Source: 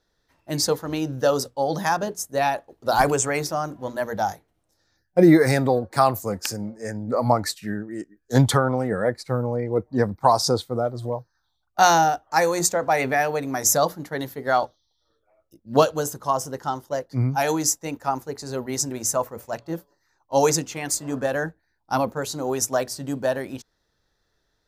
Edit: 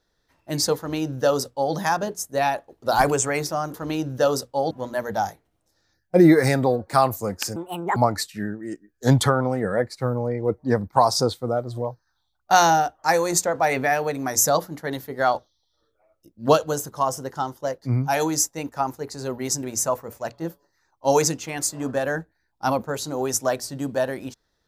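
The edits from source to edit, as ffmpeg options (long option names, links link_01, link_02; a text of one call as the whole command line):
ffmpeg -i in.wav -filter_complex "[0:a]asplit=5[link_01][link_02][link_03][link_04][link_05];[link_01]atrim=end=3.742[link_06];[link_02]atrim=start=0.768:end=1.742[link_07];[link_03]atrim=start=3.738:end=6.594[link_08];[link_04]atrim=start=6.59:end=7.24,asetpts=PTS-STARTPTS,asetrate=71442,aresample=44100,atrim=end_sample=17694,asetpts=PTS-STARTPTS[link_09];[link_05]atrim=start=7.236[link_10];[link_06][link_07]acrossfade=duration=0.004:curve1=hsin:curve2=hsin[link_11];[link_11][link_08]acrossfade=duration=0.004:curve1=hsin:curve2=hsin[link_12];[link_12][link_09]acrossfade=duration=0.004:curve1=hsin:curve2=hsin[link_13];[link_13][link_10]acrossfade=duration=0.004:curve1=hsin:curve2=hsin" out.wav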